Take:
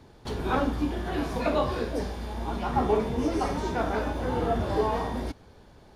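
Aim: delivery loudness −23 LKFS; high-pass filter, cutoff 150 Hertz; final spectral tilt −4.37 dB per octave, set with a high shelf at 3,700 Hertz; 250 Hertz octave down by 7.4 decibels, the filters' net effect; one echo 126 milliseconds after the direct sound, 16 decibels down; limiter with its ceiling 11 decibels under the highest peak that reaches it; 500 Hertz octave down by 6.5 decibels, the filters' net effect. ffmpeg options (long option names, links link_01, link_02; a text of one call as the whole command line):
ffmpeg -i in.wav -af "highpass=150,equalizer=frequency=250:width_type=o:gain=-6.5,equalizer=frequency=500:width_type=o:gain=-6.5,highshelf=frequency=3700:gain=3.5,alimiter=level_in=4dB:limit=-24dB:level=0:latency=1,volume=-4dB,aecho=1:1:126:0.158,volume=14.5dB" out.wav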